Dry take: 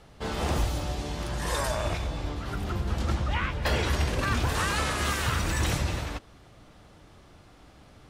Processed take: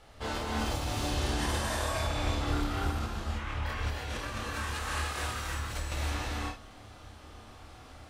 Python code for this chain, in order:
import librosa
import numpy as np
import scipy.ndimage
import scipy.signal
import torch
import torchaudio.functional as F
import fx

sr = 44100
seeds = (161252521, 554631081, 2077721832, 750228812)

p1 = fx.peak_eq(x, sr, hz=400.0, db=-5.5, octaves=0.41)
p2 = p1 + fx.room_early_taps(p1, sr, ms=(27, 55), db=(-3.5, -4.5), dry=0)
p3 = fx.over_compress(p2, sr, threshold_db=-30.0, ratio=-1.0)
p4 = fx.peak_eq(p3, sr, hz=180.0, db=-9.5, octaves=0.8)
p5 = fx.rev_gated(p4, sr, seeds[0], gate_ms=350, shape='rising', drr_db=-2.5)
y = p5 * librosa.db_to_amplitude(-6.5)